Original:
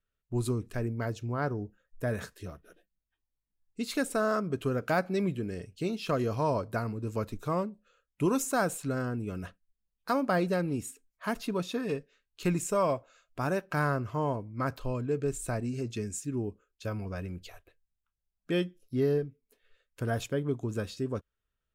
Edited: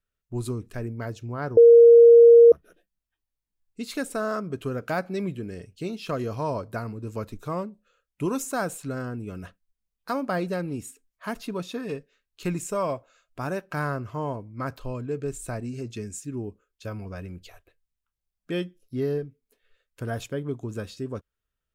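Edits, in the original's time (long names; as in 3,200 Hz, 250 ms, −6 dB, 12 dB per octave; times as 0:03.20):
0:01.57–0:02.52: beep over 468 Hz −8 dBFS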